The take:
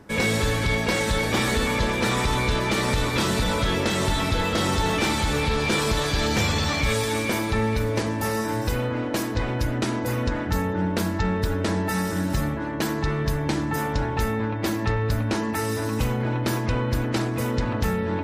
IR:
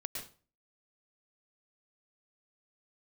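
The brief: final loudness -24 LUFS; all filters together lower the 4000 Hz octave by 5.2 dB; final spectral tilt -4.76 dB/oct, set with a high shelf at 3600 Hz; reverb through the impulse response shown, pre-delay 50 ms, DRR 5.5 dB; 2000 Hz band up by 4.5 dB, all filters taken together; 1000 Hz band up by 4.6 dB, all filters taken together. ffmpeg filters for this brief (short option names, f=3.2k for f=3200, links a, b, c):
-filter_complex "[0:a]equalizer=f=1k:t=o:g=4.5,equalizer=f=2k:t=o:g=7,highshelf=f=3.6k:g=-5,equalizer=f=4k:t=o:g=-6,asplit=2[a][b];[1:a]atrim=start_sample=2205,adelay=50[c];[b][c]afir=irnorm=-1:irlink=0,volume=-5.5dB[d];[a][d]amix=inputs=2:normalize=0,volume=-2.5dB"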